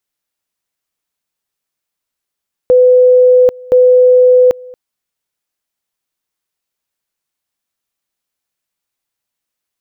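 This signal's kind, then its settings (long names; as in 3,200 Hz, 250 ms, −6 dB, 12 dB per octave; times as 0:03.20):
tone at two levels in turn 502 Hz −3.5 dBFS, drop 25 dB, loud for 0.79 s, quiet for 0.23 s, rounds 2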